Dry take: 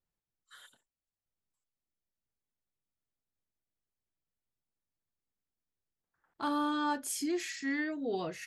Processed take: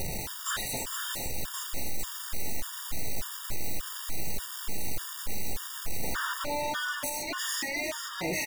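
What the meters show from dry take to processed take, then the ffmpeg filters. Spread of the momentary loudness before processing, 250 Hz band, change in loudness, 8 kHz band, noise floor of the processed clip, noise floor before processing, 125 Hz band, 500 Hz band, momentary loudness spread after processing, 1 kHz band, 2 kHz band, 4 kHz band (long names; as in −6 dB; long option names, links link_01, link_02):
4 LU, −5.0 dB, +0.5 dB, +11.5 dB, −40 dBFS, below −85 dBFS, can't be measured, +3.0 dB, 5 LU, +2.5 dB, +8.0 dB, +12.0 dB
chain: -filter_complex "[0:a]aeval=exprs='val(0)+0.5*0.0141*sgn(val(0))':channel_layout=same,afftfilt=real='re*lt(hypot(re,im),0.141)':imag='im*lt(hypot(re,im),0.141)':win_size=1024:overlap=0.75,bandreject=frequency=50:width_type=h:width=6,bandreject=frequency=100:width_type=h:width=6,bandreject=frequency=150:width_type=h:width=6,bandreject=frequency=200:width_type=h:width=6,bandreject=frequency=250:width_type=h:width=6,bandreject=frequency=300:width_type=h:width=6,bandreject=frequency=350:width_type=h:width=6,asplit=2[link_01][link_02];[link_02]aeval=exprs='0.0708*sin(PI/2*5.62*val(0)/0.0708)':channel_layout=same,volume=-11dB[link_03];[link_01][link_03]amix=inputs=2:normalize=0,asplit=2[link_04][link_05];[link_05]adelay=15,volume=-11dB[link_06];[link_04][link_06]amix=inputs=2:normalize=0,areverse,acompressor=mode=upward:threshold=-36dB:ratio=2.5,areverse,alimiter=level_in=8dB:limit=-24dB:level=0:latency=1:release=485,volume=-8dB,aecho=1:1:457|914|1371|1828:0.473|0.137|0.0398|0.0115,afftfilt=real='re*gt(sin(2*PI*1.7*pts/sr)*(1-2*mod(floor(b*sr/1024/940),2)),0)':imag='im*gt(sin(2*PI*1.7*pts/sr)*(1-2*mod(floor(b*sr/1024/940),2)),0)':win_size=1024:overlap=0.75,volume=6dB"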